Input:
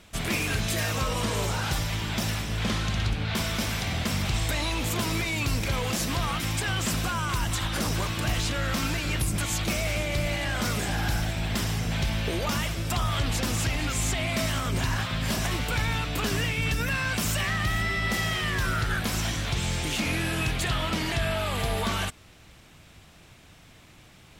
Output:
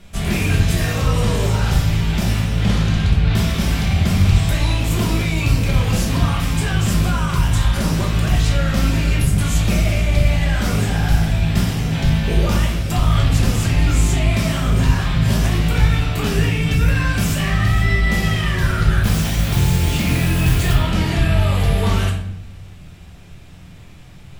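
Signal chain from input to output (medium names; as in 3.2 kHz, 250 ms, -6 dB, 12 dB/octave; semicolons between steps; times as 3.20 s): bass shelf 250 Hz +8.5 dB; 19.03–20.73 s: modulation noise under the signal 14 dB; simulated room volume 170 m³, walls mixed, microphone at 1.2 m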